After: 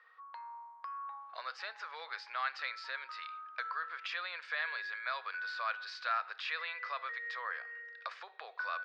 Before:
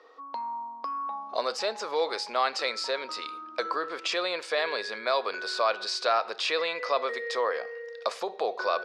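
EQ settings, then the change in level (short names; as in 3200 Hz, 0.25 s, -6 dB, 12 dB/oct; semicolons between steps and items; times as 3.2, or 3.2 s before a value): dynamic EQ 2000 Hz, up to -4 dB, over -39 dBFS, Q 1.1; ladder band-pass 1900 Hz, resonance 50%; air absorption 75 m; +6.5 dB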